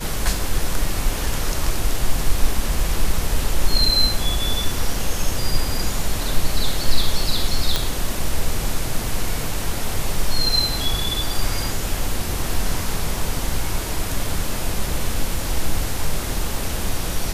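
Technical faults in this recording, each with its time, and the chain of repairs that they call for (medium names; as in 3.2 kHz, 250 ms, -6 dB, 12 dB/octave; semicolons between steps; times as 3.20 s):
7.76 s: pop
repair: de-click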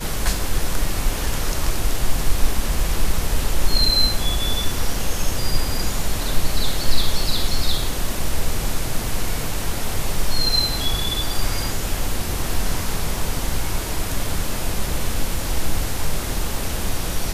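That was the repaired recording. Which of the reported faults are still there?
nothing left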